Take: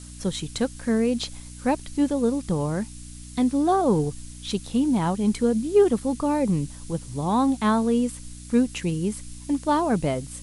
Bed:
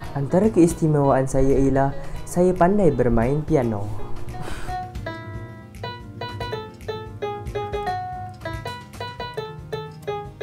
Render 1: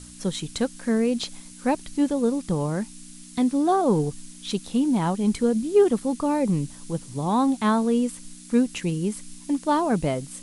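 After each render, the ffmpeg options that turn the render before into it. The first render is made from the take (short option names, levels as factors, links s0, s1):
-af "bandreject=f=60:t=h:w=4,bandreject=f=120:t=h:w=4"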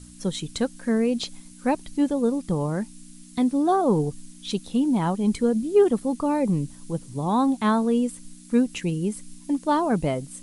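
-af "afftdn=nr=6:nf=-44"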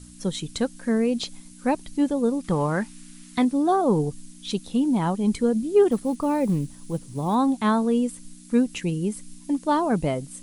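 -filter_complex "[0:a]asettb=1/sr,asplit=3[s0][s1][s2];[s0]atrim=end=2.444[s3];[s1]atrim=start=2.44:end=3.45,asetpts=PTS-STARTPTS,afade=t=in:d=0.004:c=qsin,afade=t=out:st=1.006:d=0.004:c=qsin,equalizer=f=1600:w=0.57:g=10[s4];[s2]atrim=start=3.446[s5];[s3][s4]acrossfade=d=0.004:c1=hsin:c2=qsin[s6];[s6][s5]acrossfade=d=0.004:c1=qsin:c2=hsin,asettb=1/sr,asplit=3[s7][s8][s9];[s7]atrim=end=5.914[s10];[s8]atrim=start=5.91:end=7.35,asetpts=PTS-STARTPTS,afade=t=in:d=0.004:c=qsin,afade=t=out:st=1.436:d=0.004:c=qsin,acrusher=bits=8:mode=log:mix=0:aa=0.000001[s11];[s9]atrim=start=7.346[s12];[s10][s11]acrossfade=d=0.004:c1=hsin:c2=qsin[s13];[s13][s12]acrossfade=d=0.004:c1=qsin:c2=hsin"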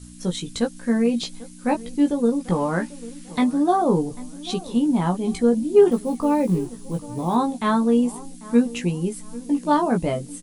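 -filter_complex "[0:a]asplit=2[s0][s1];[s1]adelay=17,volume=0.631[s2];[s0][s2]amix=inputs=2:normalize=0,asplit=2[s3][s4];[s4]adelay=793,lowpass=f=1600:p=1,volume=0.126,asplit=2[s5][s6];[s6]adelay=793,lowpass=f=1600:p=1,volume=0.37,asplit=2[s7][s8];[s8]adelay=793,lowpass=f=1600:p=1,volume=0.37[s9];[s3][s5][s7][s9]amix=inputs=4:normalize=0"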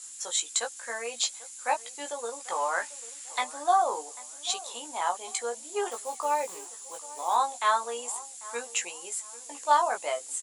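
-af "highpass=f=690:w=0.5412,highpass=f=690:w=1.3066,equalizer=f=7200:w=4.2:g=14.5"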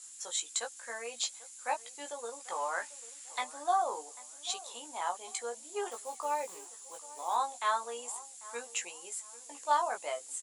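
-af "volume=0.501"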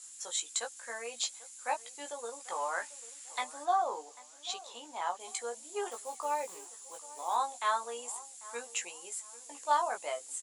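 -filter_complex "[0:a]asettb=1/sr,asplit=3[s0][s1][s2];[s0]atrim=end=3.654[s3];[s1]atrim=start=3.65:end=5.2,asetpts=PTS-STARTPTS,afade=t=in:d=0.004:c=qsin,afade=t=out:st=1.546:d=0.004:c=qsin,equalizer=f=9700:t=o:w=0.77:g=-11[s4];[s2]atrim=start=5.196[s5];[s3][s4]acrossfade=d=0.004:c1=hsin:c2=qsin[s6];[s6][s5]acrossfade=d=0.004:c1=qsin:c2=hsin"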